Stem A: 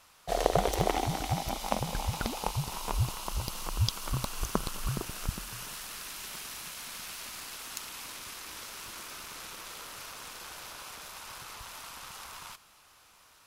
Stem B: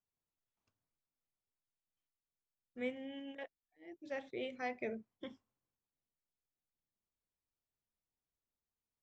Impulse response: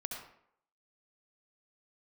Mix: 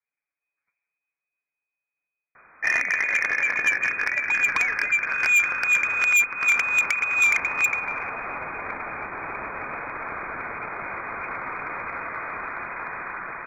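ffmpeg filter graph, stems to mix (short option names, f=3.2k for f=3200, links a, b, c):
-filter_complex "[0:a]alimiter=limit=-17dB:level=0:latency=1:release=340,dynaudnorm=f=250:g=21:m=5.5dB,adelay=2350,volume=1.5dB[a];[1:a]aecho=1:1:7.3:0.91,volume=-6dB[b];[a][b]amix=inputs=2:normalize=0,lowpass=f=2.1k:t=q:w=0.5098,lowpass=f=2.1k:t=q:w=0.6013,lowpass=f=2.1k:t=q:w=0.9,lowpass=f=2.1k:t=q:w=2.563,afreqshift=-2500,aeval=exprs='0.335*(cos(1*acos(clip(val(0)/0.335,-1,1)))-cos(1*PI/2))+0.168*(cos(5*acos(clip(val(0)/0.335,-1,1)))-cos(5*PI/2))+0.0237*(cos(7*acos(clip(val(0)/0.335,-1,1)))-cos(7*PI/2))':c=same,asoftclip=type=tanh:threshold=-13dB"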